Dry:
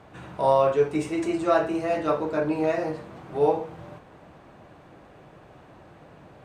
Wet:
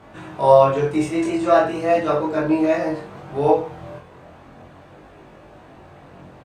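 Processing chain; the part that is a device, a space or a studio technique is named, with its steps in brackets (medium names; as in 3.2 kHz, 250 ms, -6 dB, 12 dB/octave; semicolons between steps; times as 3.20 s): double-tracked vocal (doubling 22 ms -3 dB; chorus 0.37 Hz, delay 18.5 ms, depth 5.5 ms); trim +6.5 dB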